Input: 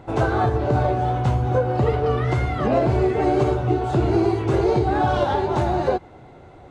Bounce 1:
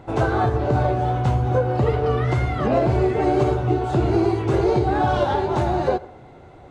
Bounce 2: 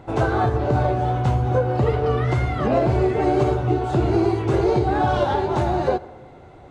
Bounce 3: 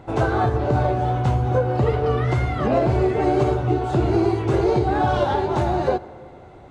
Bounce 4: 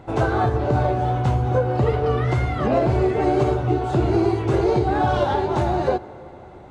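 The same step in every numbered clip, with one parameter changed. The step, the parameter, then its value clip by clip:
plate-style reverb, RT60: 0.51 s, 1.1 s, 2.3 s, 5.2 s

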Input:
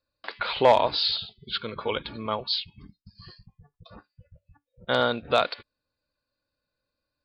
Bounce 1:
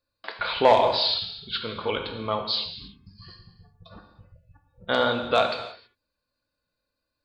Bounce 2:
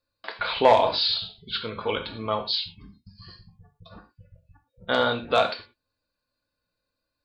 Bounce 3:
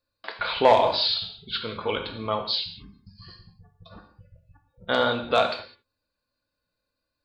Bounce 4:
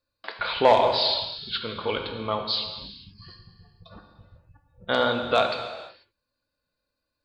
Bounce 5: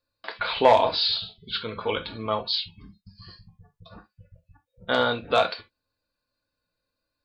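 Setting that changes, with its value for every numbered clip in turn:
gated-style reverb, gate: 350 ms, 140 ms, 230 ms, 520 ms, 90 ms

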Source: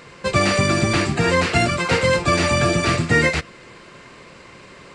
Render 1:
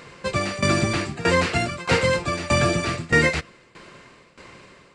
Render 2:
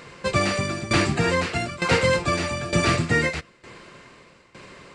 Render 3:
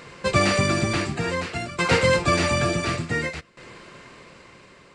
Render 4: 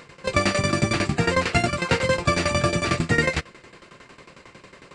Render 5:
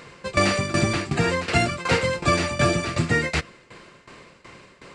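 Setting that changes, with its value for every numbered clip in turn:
tremolo, rate: 1.6 Hz, 1.1 Hz, 0.56 Hz, 11 Hz, 2.7 Hz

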